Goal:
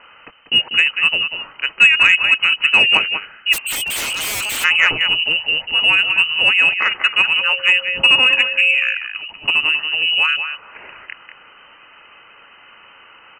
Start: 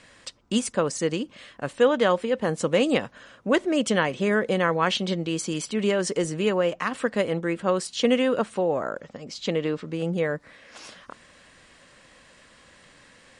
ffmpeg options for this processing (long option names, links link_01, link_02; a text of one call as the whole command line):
ffmpeg -i in.wav -filter_complex "[0:a]lowpass=frequency=2600:width_type=q:width=0.5098,lowpass=frequency=2600:width_type=q:width=0.6013,lowpass=frequency=2600:width_type=q:width=0.9,lowpass=frequency=2600:width_type=q:width=2.563,afreqshift=-3100,asettb=1/sr,asplit=3[link_01][link_02][link_03];[link_01]atrim=end=7.414[link_04];[link_02]atrim=start=7.41:end=8.75,asetpts=PTS-STARTPTS,afade=type=in:duration=0.004:curve=qsin,afade=type=out:start_time=1.336:duration=0.004:curve=qsin,aeval=exprs='val(0)+0.00794*sin(2*PI*540*n/s)':channel_layout=same[link_05];[link_03]atrim=start=8.746[link_06];[link_04][link_05]acrossfade=duration=0.004:curve1=hsin:curve2=qsin[link_07];[link_07][link_06]acrossfade=duration=0.004:curve1=qsin:curve2=hsin,asplit=2[link_08][link_09];[link_09]aecho=0:1:192:0.376[link_10];[link_08][link_10]amix=inputs=2:normalize=0,acontrast=57,asplit=3[link_11][link_12][link_13];[link_11]afade=type=out:start_time=3.52:duration=0.02[link_14];[link_12]aeval=exprs='0.0944*(abs(mod(val(0)/0.0944+3,4)-2)-1)':channel_layout=same,afade=type=in:start_time=3.52:duration=0.02,afade=type=out:start_time=4.63:duration=0.02[link_15];[link_13]afade=type=in:start_time=4.63:duration=0.02[link_16];[link_14][link_15][link_16]amix=inputs=3:normalize=0,volume=3dB" out.wav